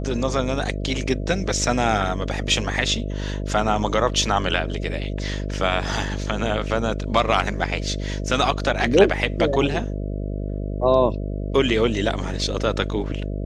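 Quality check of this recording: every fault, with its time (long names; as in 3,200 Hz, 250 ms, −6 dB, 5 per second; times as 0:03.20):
mains buzz 50 Hz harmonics 13 −27 dBFS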